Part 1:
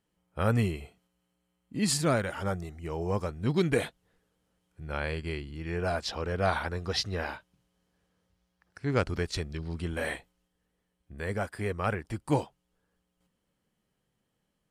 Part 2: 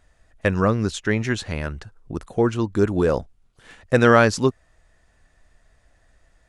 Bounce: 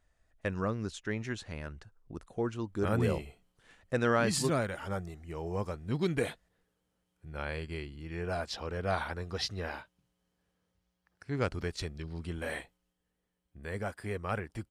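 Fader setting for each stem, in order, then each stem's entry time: −4.5, −13.5 decibels; 2.45, 0.00 seconds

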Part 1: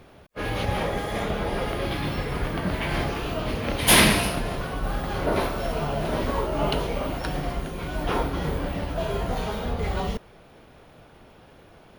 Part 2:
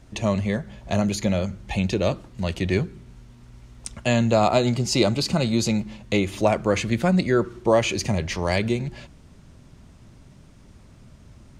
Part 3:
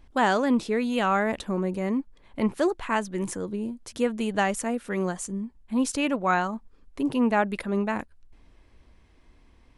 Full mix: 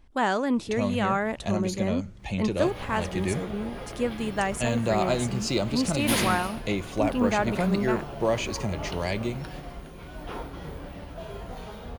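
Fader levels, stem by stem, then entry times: −11.0, −6.5, −2.5 decibels; 2.20, 0.55, 0.00 seconds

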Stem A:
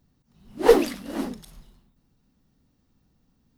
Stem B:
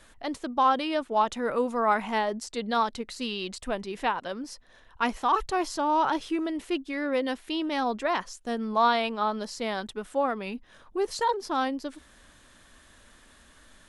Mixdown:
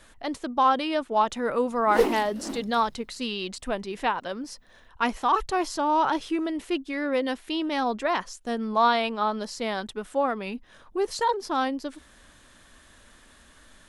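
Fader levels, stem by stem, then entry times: −6.0, +1.5 decibels; 1.30, 0.00 seconds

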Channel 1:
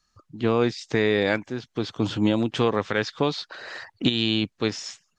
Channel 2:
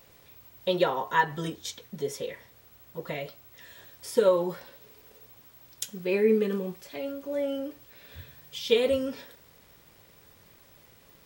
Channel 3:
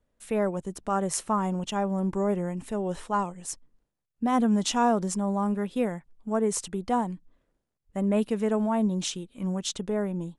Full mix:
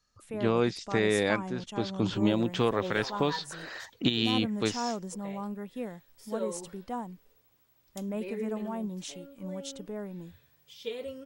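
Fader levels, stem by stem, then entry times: −4.5, −14.0, −10.0 decibels; 0.00, 2.15, 0.00 seconds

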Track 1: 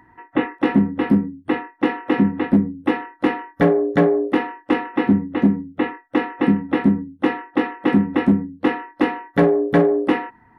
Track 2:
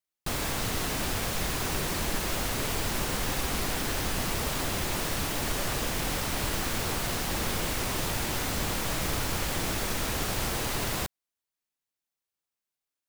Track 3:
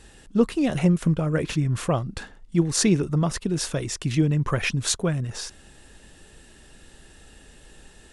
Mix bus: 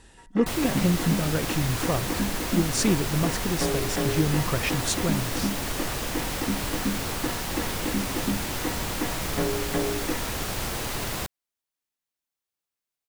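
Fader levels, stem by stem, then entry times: −13.0, 0.0, −3.5 decibels; 0.00, 0.20, 0.00 seconds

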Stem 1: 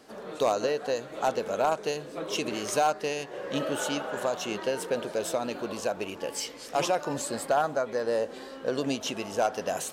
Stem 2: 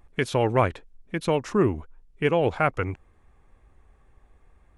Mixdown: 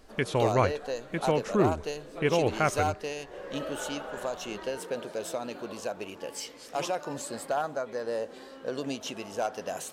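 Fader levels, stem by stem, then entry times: −4.5, −3.5 decibels; 0.00, 0.00 seconds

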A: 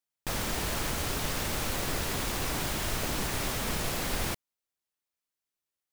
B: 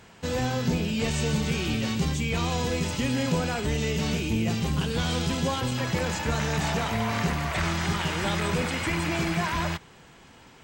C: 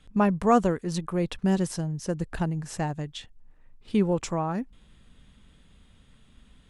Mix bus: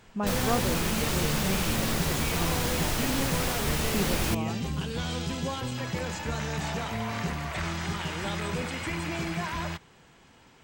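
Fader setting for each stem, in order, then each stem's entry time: +2.0, −5.0, −8.5 decibels; 0.00, 0.00, 0.00 seconds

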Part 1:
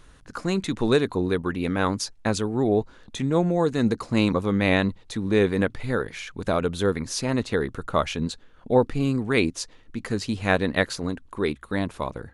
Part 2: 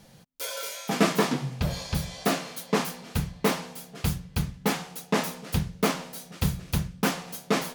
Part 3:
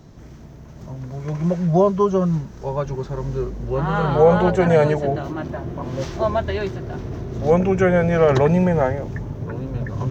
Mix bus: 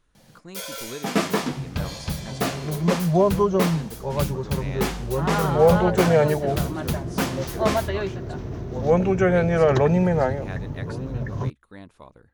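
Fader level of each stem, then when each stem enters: −16.5, 0.0, −2.5 decibels; 0.00, 0.15, 1.40 seconds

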